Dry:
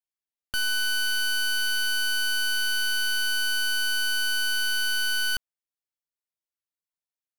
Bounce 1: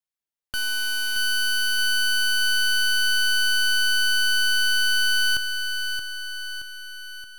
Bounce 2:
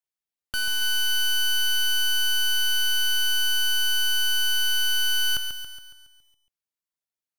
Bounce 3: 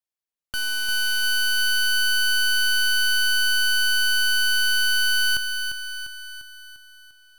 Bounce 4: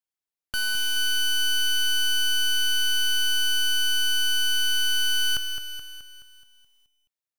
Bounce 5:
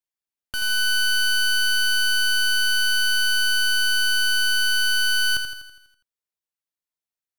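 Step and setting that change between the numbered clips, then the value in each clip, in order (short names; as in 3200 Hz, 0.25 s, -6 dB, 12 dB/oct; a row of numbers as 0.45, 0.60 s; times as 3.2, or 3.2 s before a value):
lo-fi delay, time: 624, 139, 348, 213, 82 ms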